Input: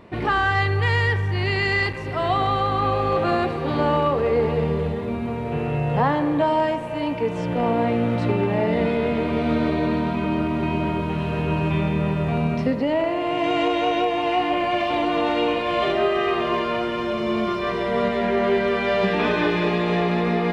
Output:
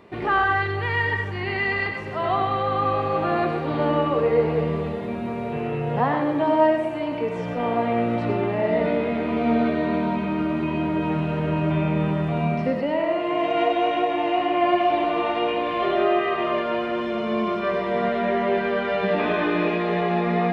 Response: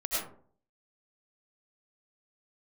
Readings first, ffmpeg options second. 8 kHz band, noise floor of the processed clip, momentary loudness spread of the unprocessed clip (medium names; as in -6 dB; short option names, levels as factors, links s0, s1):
no reading, -29 dBFS, 4 LU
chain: -filter_complex "[0:a]highpass=f=120:p=1,acrossover=split=3200[s0][s1];[s1]acompressor=threshold=0.00251:ratio=4:attack=1:release=60[s2];[s0][s2]amix=inputs=2:normalize=0,flanger=delay=2.5:depth=4:regen=70:speed=0.13:shape=sinusoidal,asplit=2[s3][s4];[1:a]atrim=start_sample=2205,afade=t=out:st=0.22:d=0.01,atrim=end_sample=10143[s5];[s4][s5]afir=irnorm=-1:irlink=0,volume=0.398[s6];[s3][s6]amix=inputs=2:normalize=0"